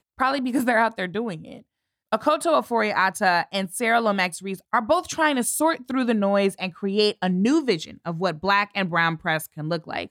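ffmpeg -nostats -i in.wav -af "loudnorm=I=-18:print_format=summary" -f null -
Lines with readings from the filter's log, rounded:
Input Integrated:    -23.1 LUFS
Input True Peak:      -7.9 dBTP
Input LRA:             1.6 LU
Input Threshold:     -33.2 LUFS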